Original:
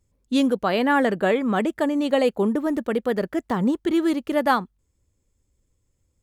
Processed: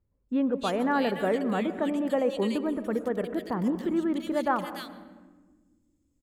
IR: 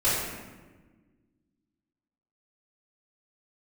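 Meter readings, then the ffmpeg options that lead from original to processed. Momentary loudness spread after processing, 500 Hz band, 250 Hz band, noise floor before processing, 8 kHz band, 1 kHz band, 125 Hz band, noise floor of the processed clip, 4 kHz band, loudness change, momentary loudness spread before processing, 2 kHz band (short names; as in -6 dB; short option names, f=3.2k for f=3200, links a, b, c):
5 LU, -5.5 dB, -5.5 dB, -71 dBFS, n/a, -6.0 dB, -5.0 dB, -73 dBFS, -7.0 dB, -6.0 dB, 5 LU, -8.0 dB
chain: -filter_complex "[0:a]acrossover=split=2100[a][b];[b]adelay=290[c];[a][c]amix=inputs=2:normalize=0,asplit=2[d][e];[1:a]atrim=start_sample=2205,highshelf=f=2.3k:g=-10,adelay=106[f];[e][f]afir=irnorm=-1:irlink=0,volume=-23.5dB[g];[d][g]amix=inputs=2:normalize=0,volume=-6dB"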